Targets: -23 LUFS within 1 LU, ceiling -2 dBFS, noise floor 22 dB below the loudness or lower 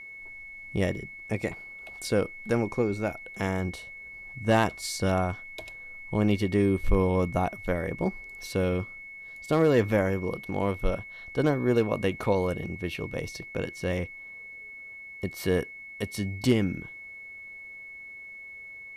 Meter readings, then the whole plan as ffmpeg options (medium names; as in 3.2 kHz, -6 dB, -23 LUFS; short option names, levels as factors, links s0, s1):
steady tone 2.2 kHz; tone level -41 dBFS; loudness -28.5 LUFS; peak level -11.5 dBFS; loudness target -23.0 LUFS
-> -af "bandreject=f=2200:w=30"
-af "volume=1.88"